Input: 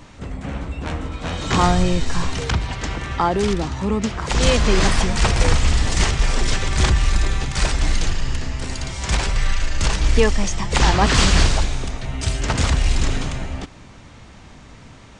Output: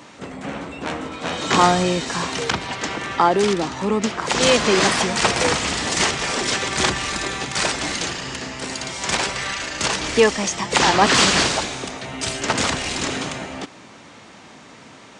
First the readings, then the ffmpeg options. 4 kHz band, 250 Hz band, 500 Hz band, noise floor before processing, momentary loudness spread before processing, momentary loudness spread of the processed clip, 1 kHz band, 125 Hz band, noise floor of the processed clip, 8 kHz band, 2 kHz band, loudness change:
+3.5 dB, -0.5 dB, +3.0 dB, -43 dBFS, 11 LU, 13 LU, +3.5 dB, -10.0 dB, -44 dBFS, +3.5 dB, +3.5 dB, +1.0 dB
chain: -af "highpass=240,volume=3.5dB"

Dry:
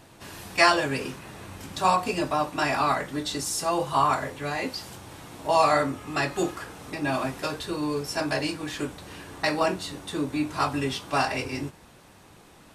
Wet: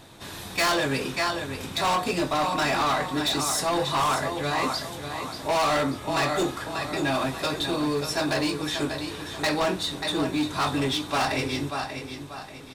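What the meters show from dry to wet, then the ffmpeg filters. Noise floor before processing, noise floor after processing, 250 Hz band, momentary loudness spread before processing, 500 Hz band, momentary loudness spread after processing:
-52 dBFS, -39 dBFS, +2.0 dB, 16 LU, +0.5 dB, 9 LU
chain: -filter_complex "[0:a]equalizer=f=3.7k:t=o:w=0.22:g=9.5,bandreject=f=2.8k:w=26,asplit=2[a][b];[b]aecho=0:1:587|1174|1761|2348:0.355|0.131|0.0486|0.018[c];[a][c]amix=inputs=2:normalize=0,asoftclip=type=hard:threshold=-23dB,volume=2.5dB"

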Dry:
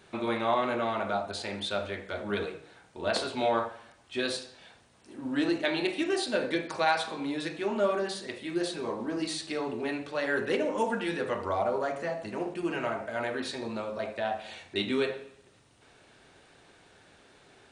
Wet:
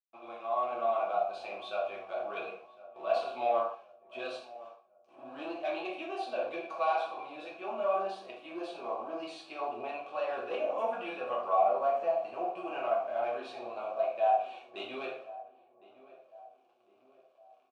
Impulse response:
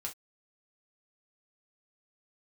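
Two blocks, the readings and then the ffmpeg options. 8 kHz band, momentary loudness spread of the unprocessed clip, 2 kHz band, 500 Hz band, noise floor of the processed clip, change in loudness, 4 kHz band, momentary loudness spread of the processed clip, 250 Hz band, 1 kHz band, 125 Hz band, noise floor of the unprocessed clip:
under -20 dB, 8 LU, -9.5 dB, -1.5 dB, -66 dBFS, -3.0 dB, -12.5 dB, 15 LU, -14.0 dB, +1.0 dB, under -20 dB, -60 dBFS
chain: -filter_complex "[0:a]dynaudnorm=f=520:g=3:m=11.5dB,asoftclip=type=tanh:threshold=-12dB,flanger=delay=4.2:depth=8:regen=81:speed=1.2:shape=triangular,aeval=exprs='sgn(val(0))*max(abs(val(0))-0.00473,0)':c=same,asplit=3[a][b][c];[a]bandpass=f=730:t=q:w=8,volume=0dB[d];[b]bandpass=f=1.09k:t=q:w=8,volume=-6dB[e];[c]bandpass=f=2.44k:t=q:w=8,volume=-9dB[f];[d][e][f]amix=inputs=3:normalize=0,asplit=2[g][h];[h]adelay=1058,lowpass=f=1.2k:p=1,volume=-17.5dB,asplit=2[i][j];[j]adelay=1058,lowpass=f=1.2k:p=1,volume=0.51,asplit=2[k][l];[l]adelay=1058,lowpass=f=1.2k:p=1,volume=0.51,asplit=2[m][n];[n]adelay=1058,lowpass=f=1.2k:p=1,volume=0.51[o];[g][i][k][m][o]amix=inputs=5:normalize=0[p];[1:a]atrim=start_sample=2205,asetrate=31311,aresample=44100[q];[p][q]afir=irnorm=-1:irlink=0,volume=2dB"

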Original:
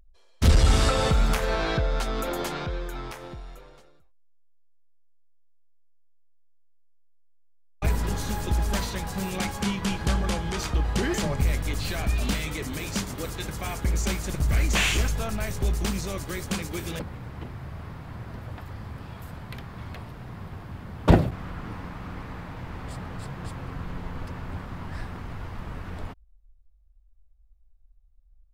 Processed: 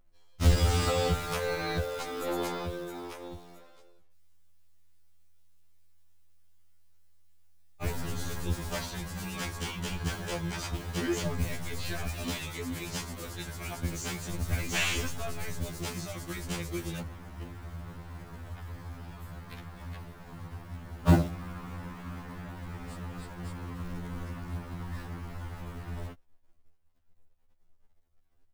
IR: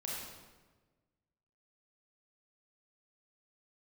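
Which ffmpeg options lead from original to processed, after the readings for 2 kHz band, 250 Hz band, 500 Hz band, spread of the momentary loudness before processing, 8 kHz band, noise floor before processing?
-5.0 dB, -5.0 dB, -4.0 dB, 17 LU, -4.5 dB, -56 dBFS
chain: -af "acrusher=bits=5:mode=log:mix=0:aa=0.000001,aeval=exprs='0.708*(cos(1*acos(clip(val(0)/0.708,-1,1)))-cos(1*PI/2))+0.0126*(cos(5*acos(clip(val(0)/0.708,-1,1)))-cos(5*PI/2))':c=same,afftfilt=real='re*2*eq(mod(b,4),0)':imag='im*2*eq(mod(b,4),0)':win_size=2048:overlap=0.75,volume=-3.5dB"

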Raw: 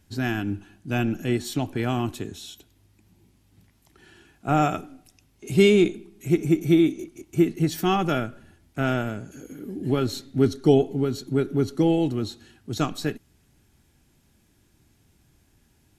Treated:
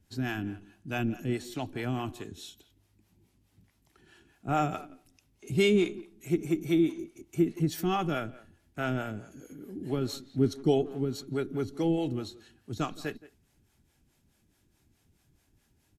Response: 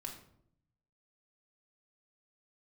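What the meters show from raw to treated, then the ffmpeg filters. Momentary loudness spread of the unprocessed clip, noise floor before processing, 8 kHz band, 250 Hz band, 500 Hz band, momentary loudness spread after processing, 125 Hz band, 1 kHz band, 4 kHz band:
17 LU, -63 dBFS, -6.5 dB, -7.0 dB, -7.0 dB, 17 LU, -7.0 dB, -6.0 dB, -6.0 dB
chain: -filter_complex "[0:a]asplit=2[a][b];[b]adelay=170,highpass=300,lowpass=3.4k,asoftclip=type=hard:threshold=-15dB,volume=-17dB[c];[a][c]amix=inputs=2:normalize=0,acrossover=split=420[d][e];[d]aeval=exprs='val(0)*(1-0.7/2+0.7/2*cos(2*PI*4.7*n/s))':c=same[f];[e]aeval=exprs='val(0)*(1-0.7/2-0.7/2*cos(2*PI*4.7*n/s))':c=same[g];[f][g]amix=inputs=2:normalize=0,volume=-3.5dB"

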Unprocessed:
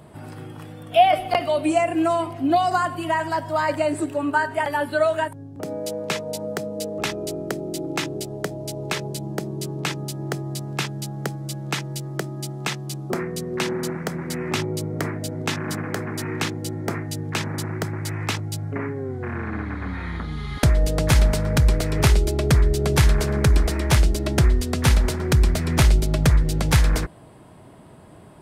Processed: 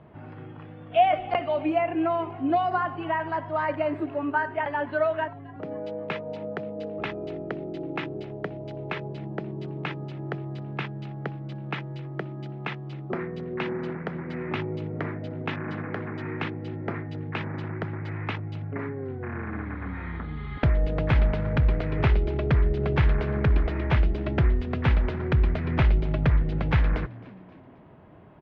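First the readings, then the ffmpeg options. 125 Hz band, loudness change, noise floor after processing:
-4.5 dB, -5.0 dB, -44 dBFS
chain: -filter_complex "[0:a]lowpass=f=2.8k:w=0.5412,lowpass=f=2.8k:w=1.3066,asplit=4[a][b][c][d];[b]adelay=265,afreqshift=68,volume=-22dB[e];[c]adelay=530,afreqshift=136,volume=-28dB[f];[d]adelay=795,afreqshift=204,volume=-34dB[g];[a][e][f][g]amix=inputs=4:normalize=0,volume=-4.5dB"

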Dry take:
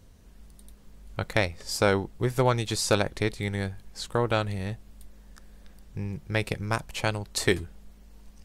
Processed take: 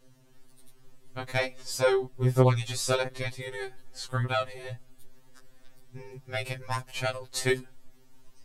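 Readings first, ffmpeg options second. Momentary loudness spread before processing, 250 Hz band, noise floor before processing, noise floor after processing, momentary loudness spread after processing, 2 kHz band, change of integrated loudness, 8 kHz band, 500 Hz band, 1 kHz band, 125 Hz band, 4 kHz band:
12 LU, -4.5 dB, -53 dBFS, -56 dBFS, 18 LU, -3.0 dB, -1.0 dB, -2.5 dB, -1.0 dB, -2.5 dB, 0.0 dB, -3.0 dB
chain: -af "afftfilt=real='re*2.45*eq(mod(b,6),0)':imag='im*2.45*eq(mod(b,6),0)':win_size=2048:overlap=0.75"

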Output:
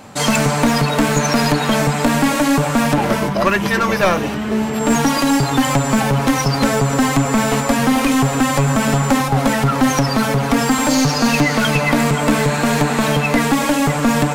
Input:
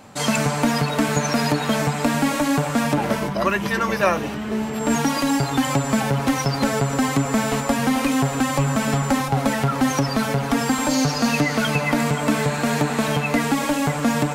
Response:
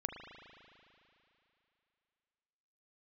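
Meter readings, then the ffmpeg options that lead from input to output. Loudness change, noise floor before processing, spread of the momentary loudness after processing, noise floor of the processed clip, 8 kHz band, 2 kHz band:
+5.0 dB, -26 dBFS, 2 LU, -21 dBFS, +5.5 dB, +5.0 dB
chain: -af "aeval=exprs='clip(val(0),-1,0.119)':c=same,volume=6dB"

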